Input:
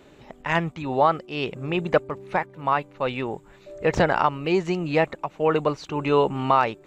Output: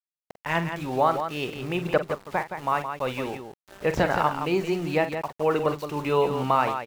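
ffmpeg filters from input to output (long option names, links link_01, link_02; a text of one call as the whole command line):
ffmpeg -i in.wav -af "aeval=exprs='val(0)*gte(abs(val(0)),0.0158)':channel_layout=same,aecho=1:1:46.65|169.1:0.282|0.398,volume=-3dB" out.wav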